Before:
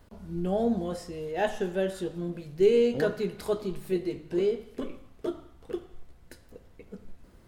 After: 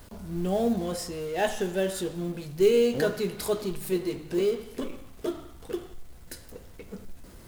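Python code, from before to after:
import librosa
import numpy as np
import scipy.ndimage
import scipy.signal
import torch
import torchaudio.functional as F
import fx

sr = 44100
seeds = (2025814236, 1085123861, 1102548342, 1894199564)

y = fx.law_mismatch(x, sr, coded='mu')
y = fx.high_shelf(y, sr, hz=4200.0, db=10.0)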